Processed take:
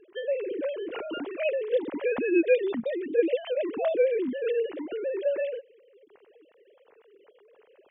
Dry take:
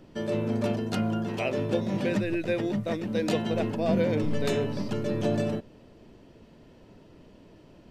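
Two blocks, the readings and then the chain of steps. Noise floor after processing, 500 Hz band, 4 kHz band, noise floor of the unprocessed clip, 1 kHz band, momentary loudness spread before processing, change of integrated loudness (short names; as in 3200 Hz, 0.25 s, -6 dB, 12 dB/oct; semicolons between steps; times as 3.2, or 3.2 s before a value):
-61 dBFS, +3.5 dB, -5.5 dB, -54 dBFS, -6.0 dB, 4 LU, +0.5 dB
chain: sine-wave speech; bell 1300 Hz -2.5 dB 0.83 oct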